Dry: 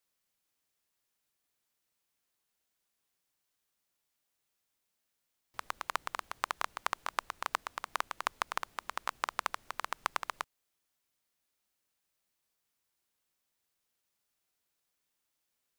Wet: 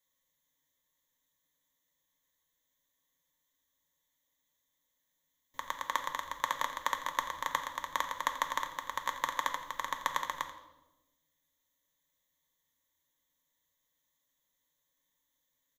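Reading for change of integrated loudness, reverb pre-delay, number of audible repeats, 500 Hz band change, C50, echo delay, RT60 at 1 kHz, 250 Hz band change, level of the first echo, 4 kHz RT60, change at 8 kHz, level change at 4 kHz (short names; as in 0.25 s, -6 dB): +2.5 dB, 4 ms, 1, +1.5 dB, 9.0 dB, 86 ms, 0.90 s, +3.0 dB, -14.5 dB, 0.80 s, +3.0 dB, +2.5 dB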